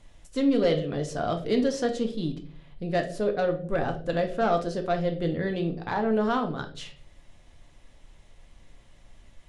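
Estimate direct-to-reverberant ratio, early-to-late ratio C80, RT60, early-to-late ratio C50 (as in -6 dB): 4.0 dB, 16.0 dB, 0.50 s, 11.0 dB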